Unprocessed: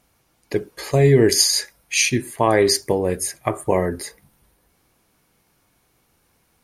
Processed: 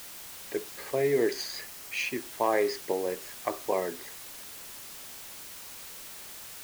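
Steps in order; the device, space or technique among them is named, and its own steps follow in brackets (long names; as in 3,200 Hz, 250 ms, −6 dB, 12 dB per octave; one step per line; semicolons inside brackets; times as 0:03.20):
wax cylinder (band-pass filter 350–2,700 Hz; tape wow and flutter; white noise bed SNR 11 dB)
0:01.61–0:02.22: notch filter 3,600 Hz, Q 13
level −8 dB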